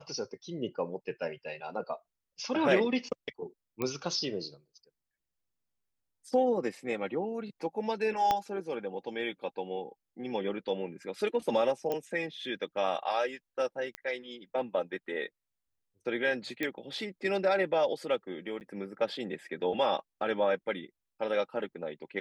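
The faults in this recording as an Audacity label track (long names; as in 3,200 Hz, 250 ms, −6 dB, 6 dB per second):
3.820000	3.820000	click −18 dBFS
8.310000	8.310000	click −14 dBFS
11.920000	11.920000	click −20 dBFS
13.950000	13.950000	click −21 dBFS
16.630000	16.630000	click −18 dBFS
18.600000	18.610000	drop-out 9.4 ms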